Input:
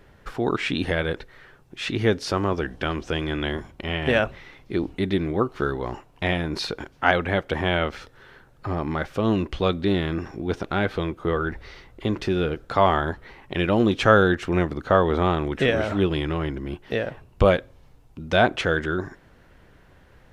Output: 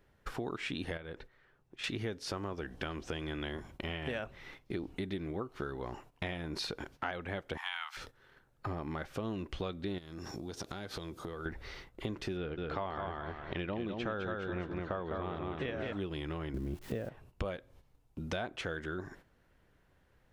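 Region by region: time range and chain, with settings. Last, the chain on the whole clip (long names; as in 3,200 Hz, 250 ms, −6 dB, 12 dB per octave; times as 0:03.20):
0:00.97–0:01.84: high-shelf EQ 5,000 Hz −9 dB + downward compressor 1.5 to 1, threshold −49 dBFS
0:07.57–0:07.97: Butterworth high-pass 820 Hz 72 dB per octave + high-shelf EQ 4,300 Hz +5 dB
0:09.98–0:11.46: high-pass filter 49 Hz + high shelf with overshoot 3,400 Hz +9 dB, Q 1.5 + downward compressor 10 to 1, threshold −33 dBFS
0:12.37–0:15.93: low-pass filter 3,900 Hz + repeating echo 206 ms, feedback 23%, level −4 dB
0:16.54–0:17.09: spike at every zero crossing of −24.5 dBFS + low-pass filter 1,800 Hz 6 dB per octave + low-shelf EQ 480 Hz +11 dB
whole clip: noise gate −46 dBFS, range −12 dB; downward compressor 6 to 1, threshold −32 dBFS; high-shelf EQ 7,900 Hz +5.5 dB; level −3.5 dB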